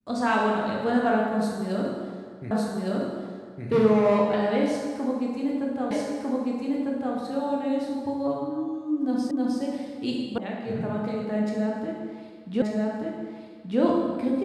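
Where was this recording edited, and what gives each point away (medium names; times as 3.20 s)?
2.51 s: repeat of the last 1.16 s
5.91 s: repeat of the last 1.25 s
9.31 s: repeat of the last 0.31 s
10.38 s: sound stops dead
12.62 s: repeat of the last 1.18 s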